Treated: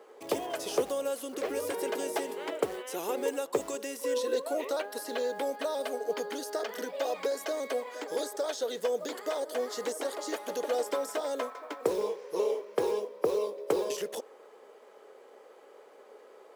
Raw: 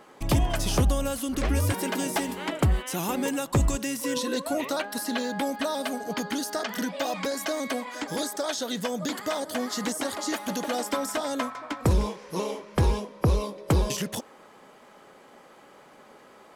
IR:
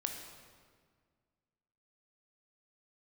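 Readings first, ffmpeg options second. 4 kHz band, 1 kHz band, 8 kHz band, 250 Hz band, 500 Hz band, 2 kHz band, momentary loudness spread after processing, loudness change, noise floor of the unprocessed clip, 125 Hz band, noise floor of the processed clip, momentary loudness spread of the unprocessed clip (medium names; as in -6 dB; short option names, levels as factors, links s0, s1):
-8.0 dB, -5.5 dB, -8.0 dB, -11.0 dB, +1.5 dB, -7.5 dB, 4 LU, -5.0 dB, -53 dBFS, under -25 dB, -55 dBFS, 6 LU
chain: -af "acrusher=bits=6:mode=log:mix=0:aa=0.000001,highpass=f=440:t=q:w=4.9,volume=0.398"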